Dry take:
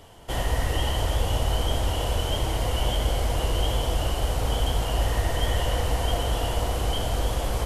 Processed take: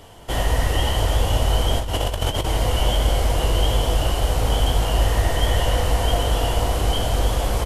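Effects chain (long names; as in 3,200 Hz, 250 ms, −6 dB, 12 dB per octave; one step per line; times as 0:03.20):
0:01.79–0:02.46: compressor whose output falls as the input rises −27 dBFS, ratio −0.5
double-tracking delay 20 ms −12 dB
level +4.5 dB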